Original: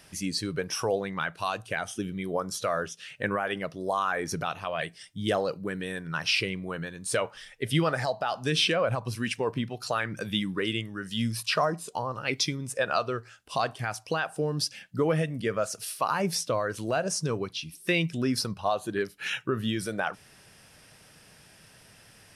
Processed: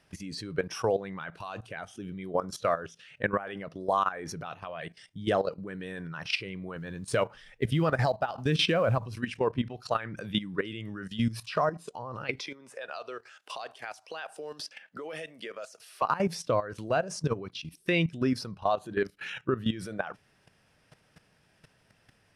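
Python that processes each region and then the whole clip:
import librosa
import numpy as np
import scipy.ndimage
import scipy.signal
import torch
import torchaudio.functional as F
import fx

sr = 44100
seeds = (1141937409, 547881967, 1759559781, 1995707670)

y = fx.chain(x, sr, fx.low_shelf(hz=260.0, db=6.5),
    fx.quant_float(bits=4), at=(6.76, 9.07))
y = fx.chain(y, sr, fx.highpass(hz=570.0, slope=12),
    fx.dynamic_eq(hz=1200.0, q=1.1, threshold_db=-42.0, ratio=4.0, max_db=-6),
    fx.band_squash(depth_pct=70), at=(12.39, 16.02))
y = fx.lowpass(y, sr, hz=2700.0, slope=6)
y = fx.level_steps(y, sr, step_db=14)
y = y * 10.0 ** (3.5 / 20.0)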